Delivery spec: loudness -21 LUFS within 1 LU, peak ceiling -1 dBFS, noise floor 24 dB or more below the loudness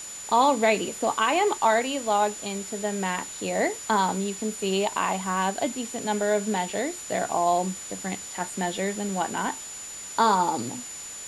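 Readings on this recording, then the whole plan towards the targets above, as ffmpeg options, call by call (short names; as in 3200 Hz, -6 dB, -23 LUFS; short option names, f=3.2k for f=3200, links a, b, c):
steady tone 7000 Hz; tone level -37 dBFS; noise floor -39 dBFS; noise floor target -50 dBFS; loudness -26.0 LUFS; peak -9.0 dBFS; loudness target -21.0 LUFS
-> -af "bandreject=f=7k:w=30"
-af "afftdn=nr=11:nf=-39"
-af "volume=5dB"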